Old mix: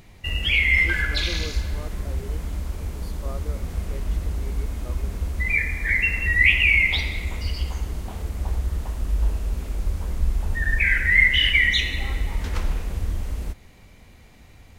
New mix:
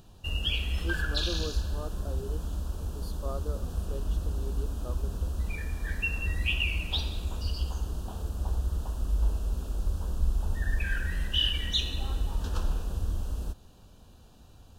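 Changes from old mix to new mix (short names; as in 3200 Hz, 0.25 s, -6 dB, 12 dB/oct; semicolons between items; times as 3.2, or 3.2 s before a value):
background -4.5 dB; master: add Butterworth band-stop 2100 Hz, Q 1.8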